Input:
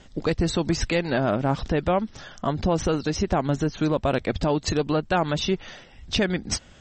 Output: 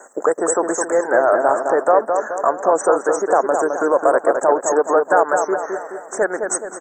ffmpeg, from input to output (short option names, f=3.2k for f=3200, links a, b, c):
-filter_complex "[0:a]highpass=f=450:w=0.5412,highpass=f=450:w=1.3066,highshelf=f=4.9k:g=9.5,asplit=2[a][b];[b]acompressor=threshold=-34dB:ratio=6,volume=0dB[c];[a][c]amix=inputs=2:normalize=0,apsyclip=14.5dB,asuperstop=centerf=3500:order=12:qfactor=0.64,asplit=2[d][e];[e]adelay=212,lowpass=f=2.3k:p=1,volume=-5dB,asplit=2[f][g];[g]adelay=212,lowpass=f=2.3k:p=1,volume=0.51,asplit=2[h][i];[i]adelay=212,lowpass=f=2.3k:p=1,volume=0.51,asplit=2[j][k];[k]adelay=212,lowpass=f=2.3k:p=1,volume=0.51,asplit=2[l][m];[m]adelay=212,lowpass=f=2.3k:p=1,volume=0.51,asplit=2[n][o];[o]adelay=212,lowpass=f=2.3k:p=1,volume=0.51[p];[f][h][j][l][n][p]amix=inputs=6:normalize=0[q];[d][q]amix=inputs=2:normalize=0,volume=-5.5dB"